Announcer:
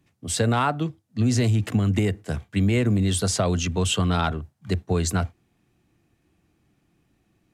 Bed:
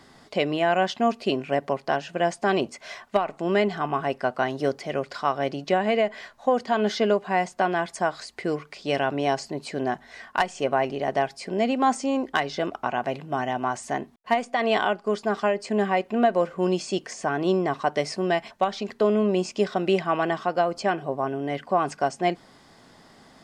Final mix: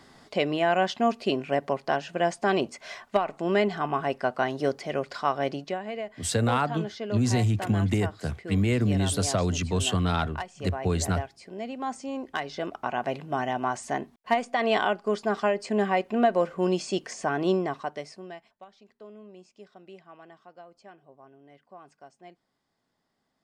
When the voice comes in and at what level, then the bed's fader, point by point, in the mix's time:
5.95 s, -3.0 dB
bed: 5.56 s -1.5 dB
5.80 s -12 dB
11.72 s -12 dB
13.11 s -1.5 dB
17.53 s -1.5 dB
18.65 s -25.5 dB

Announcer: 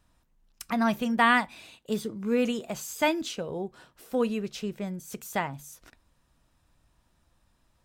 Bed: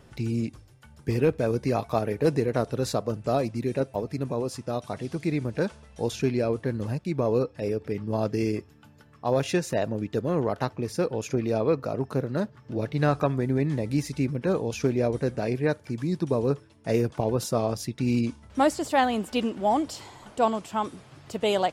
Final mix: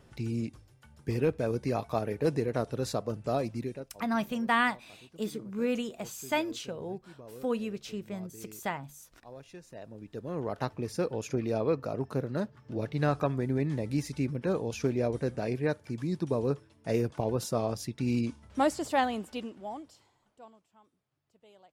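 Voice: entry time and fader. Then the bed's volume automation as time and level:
3.30 s, -4.5 dB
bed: 3.62 s -5 dB
3.95 s -23.5 dB
9.55 s -23.5 dB
10.65 s -4.5 dB
18.99 s -4.5 dB
20.77 s -34.5 dB

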